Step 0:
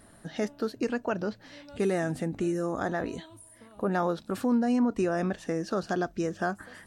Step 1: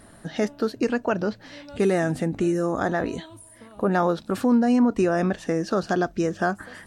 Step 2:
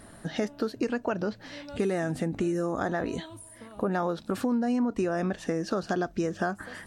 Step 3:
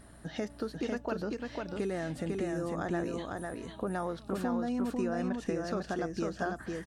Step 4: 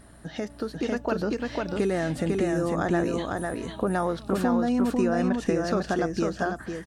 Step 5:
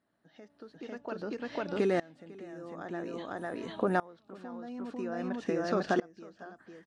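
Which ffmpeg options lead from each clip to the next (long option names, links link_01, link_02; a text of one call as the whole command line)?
ffmpeg -i in.wav -af "highshelf=frequency=9800:gain=-4,volume=6dB" out.wav
ffmpeg -i in.wav -af "acompressor=threshold=-26dB:ratio=3" out.wav
ffmpeg -i in.wav -af "aeval=exprs='val(0)+0.00316*(sin(2*PI*60*n/s)+sin(2*PI*2*60*n/s)/2+sin(2*PI*3*60*n/s)/3+sin(2*PI*4*60*n/s)/4+sin(2*PI*5*60*n/s)/5)':channel_layout=same,aecho=1:1:499:0.708,volume=-6.5dB" out.wav
ffmpeg -i in.wav -af "dynaudnorm=framelen=350:gausssize=5:maxgain=5.5dB,volume=3dB" out.wav
ffmpeg -i in.wav -af "highpass=200,lowpass=4900,aeval=exprs='val(0)*pow(10,-25*if(lt(mod(-0.5*n/s,1),2*abs(-0.5)/1000),1-mod(-0.5*n/s,1)/(2*abs(-0.5)/1000),(mod(-0.5*n/s,1)-2*abs(-0.5)/1000)/(1-2*abs(-0.5)/1000))/20)':channel_layout=same" out.wav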